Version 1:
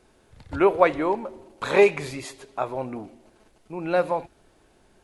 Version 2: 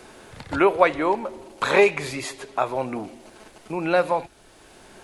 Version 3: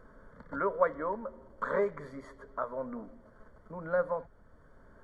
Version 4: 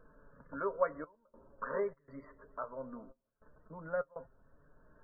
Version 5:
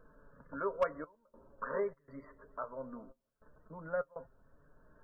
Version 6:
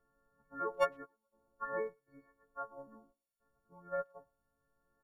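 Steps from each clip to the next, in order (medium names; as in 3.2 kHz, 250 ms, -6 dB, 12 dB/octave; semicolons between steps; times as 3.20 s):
tilt shelf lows -3 dB, about 720 Hz; three bands compressed up and down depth 40%; trim +3 dB
static phaser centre 520 Hz, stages 8; added noise brown -49 dBFS; Savitzky-Golay filter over 41 samples; trim -8 dB
loudest bins only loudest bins 64; trance gate "xxxxxxx..xxxx." 101 bpm -24 dB; flange 0.82 Hz, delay 6.4 ms, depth 1.3 ms, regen +53%; trim -2 dB
overload inside the chain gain 21.5 dB
partials quantised in pitch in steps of 4 st; speakerphone echo 110 ms, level -22 dB; upward expansion 1.5:1, over -56 dBFS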